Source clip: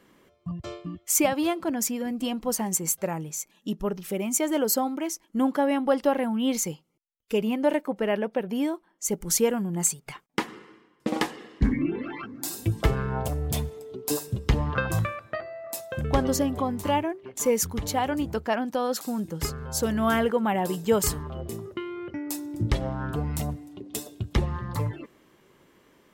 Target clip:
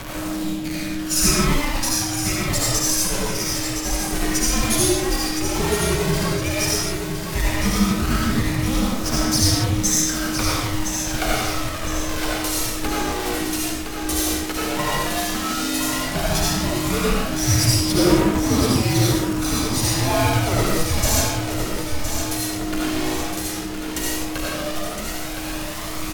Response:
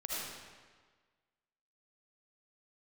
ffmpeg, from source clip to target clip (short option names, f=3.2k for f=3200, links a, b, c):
-filter_complex "[0:a]aeval=exprs='val(0)+0.5*0.0501*sgn(val(0))':c=same,bandreject=f=424:t=h:w=4,bandreject=f=848:t=h:w=4,bandreject=f=1.272k:t=h:w=4,bandreject=f=1.696k:t=h:w=4,bandreject=f=2.12k:t=h:w=4,bandreject=f=2.544k:t=h:w=4,acrossover=split=410[a][b];[a]acompressor=threshold=-44dB:ratio=2[c];[c][b]amix=inputs=2:normalize=0,acrusher=bits=5:dc=4:mix=0:aa=0.000001,afreqshift=-360,aphaser=in_gain=1:out_gain=1:delay=2.5:decay=0.48:speed=0.11:type=triangular,asetrate=38170,aresample=44100,atempo=1.15535,aecho=1:1:1014|2028|3042|4056|5070:0.422|0.194|0.0892|0.041|0.0189[d];[1:a]atrim=start_sample=2205,afade=t=out:st=0.32:d=0.01,atrim=end_sample=14553[e];[d][e]afir=irnorm=-1:irlink=0,volume=2dB"